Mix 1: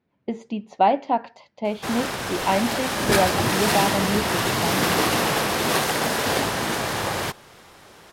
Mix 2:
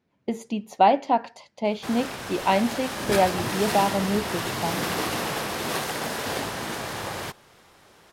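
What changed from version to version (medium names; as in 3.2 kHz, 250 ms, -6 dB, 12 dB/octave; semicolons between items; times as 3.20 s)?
speech: remove distance through air 130 m; background -6.5 dB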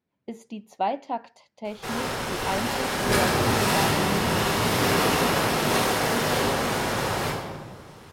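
speech -8.5 dB; reverb: on, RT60 1.7 s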